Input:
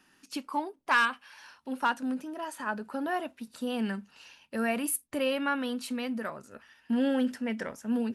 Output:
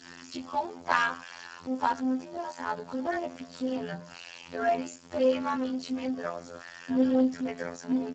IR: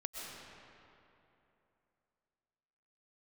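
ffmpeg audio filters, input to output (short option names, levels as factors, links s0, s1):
-filter_complex "[0:a]aeval=exprs='val(0)+0.5*0.0133*sgn(val(0))':c=same,adynamicequalizer=threshold=0.00562:dfrequency=620:dqfactor=1.6:tfrequency=620:tqfactor=1.6:attack=5:release=100:ratio=0.375:range=2.5:mode=boostabove:tftype=bell,asplit=2[s0][s1];[s1]acrusher=bits=3:mix=0:aa=0.5,volume=0.299[s2];[s0][s2]amix=inputs=2:normalize=0,asplit=4[s3][s4][s5][s6];[s4]adelay=98,afreqshift=-41,volume=0.0708[s7];[s5]adelay=196,afreqshift=-82,volume=0.0269[s8];[s6]adelay=294,afreqshift=-123,volume=0.0102[s9];[s3][s7][s8][s9]amix=inputs=4:normalize=0,afftfilt=real='hypot(re,im)*cos(PI*b)':imag='0':win_size=2048:overlap=0.75" -ar 16000 -c:a libspeex -b:a 8k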